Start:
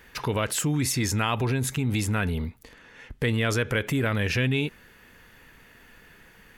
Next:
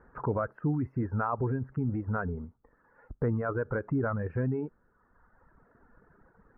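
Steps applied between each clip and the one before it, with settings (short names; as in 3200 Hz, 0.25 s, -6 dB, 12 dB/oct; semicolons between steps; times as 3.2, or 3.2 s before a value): reverb removal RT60 1.4 s; elliptic low-pass 1400 Hz, stop band 60 dB; gain -1.5 dB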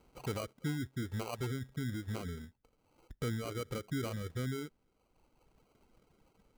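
dynamic EQ 1100 Hz, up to -5 dB, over -45 dBFS, Q 1; sample-and-hold 25×; gain -7 dB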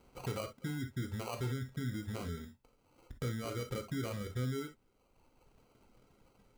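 compressor 3:1, threshold -38 dBFS, peak gain reduction 5.5 dB; reverb, pre-delay 3 ms, DRR 4.5 dB; gain +1.5 dB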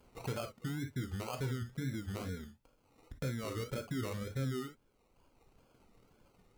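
wow and flutter 140 cents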